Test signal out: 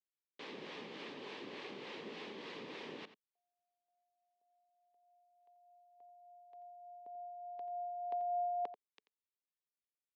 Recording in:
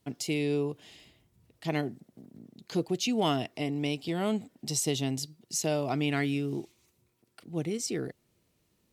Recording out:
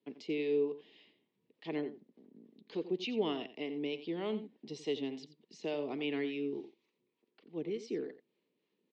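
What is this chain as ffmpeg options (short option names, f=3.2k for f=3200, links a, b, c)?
-filter_complex "[0:a]highpass=f=210:w=0.5412,highpass=f=210:w=1.3066,equalizer=f=430:t=q:w=4:g=6,equalizer=f=690:t=q:w=4:g=-8,equalizer=f=1.4k:t=q:w=4:g=-10,lowpass=f=3.8k:w=0.5412,lowpass=f=3.8k:w=1.3066,acrossover=split=530[a][b];[a]aeval=exprs='val(0)*(1-0.5/2+0.5/2*cos(2*PI*3.4*n/s))':c=same[c];[b]aeval=exprs='val(0)*(1-0.5/2-0.5/2*cos(2*PI*3.4*n/s))':c=same[d];[c][d]amix=inputs=2:normalize=0,asplit=2[e][f];[f]adelay=87.46,volume=-13dB,highshelf=f=4k:g=-1.97[g];[e][g]amix=inputs=2:normalize=0,volume=-4dB"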